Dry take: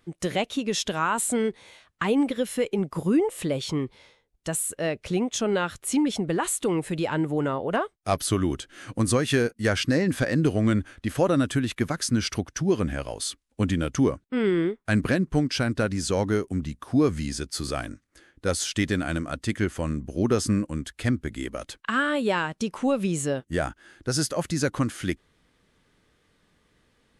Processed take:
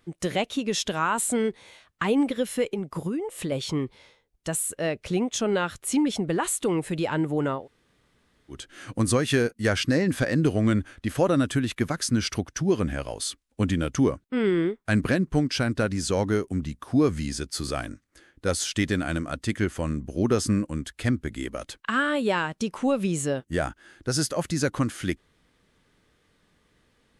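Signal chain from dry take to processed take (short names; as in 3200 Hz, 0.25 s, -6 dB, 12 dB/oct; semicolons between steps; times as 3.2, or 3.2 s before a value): 2.73–3.52 compressor 10:1, threshold -26 dBFS, peak gain reduction 9.5 dB; 7.6–8.56 room tone, crossfade 0.16 s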